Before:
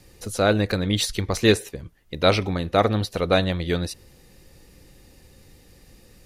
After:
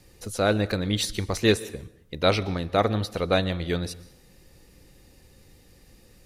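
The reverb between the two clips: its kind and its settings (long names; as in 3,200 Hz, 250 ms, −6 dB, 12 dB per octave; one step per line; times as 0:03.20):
dense smooth reverb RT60 0.74 s, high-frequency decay 0.8×, pre-delay 110 ms, DRR 19 dB
level −3 dB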